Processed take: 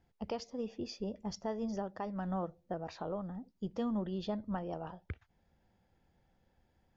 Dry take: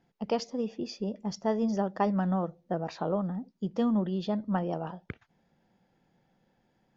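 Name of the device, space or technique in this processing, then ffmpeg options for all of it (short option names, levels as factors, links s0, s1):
car stereo with a boomy subwoofer: -af "lowshelf=f=110:t=q:w=1.5:g=11.5,alimiter=limit=0.0708:level=0:latency=1:release=441,volume=0.631"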